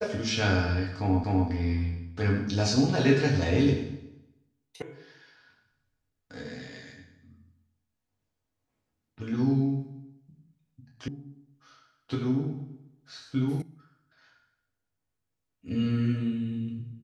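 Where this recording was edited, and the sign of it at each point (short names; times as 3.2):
1.24 repeat of the last 0.25 s
4.82 sound cut off
11.08 sound cut off
13.62 sound cut off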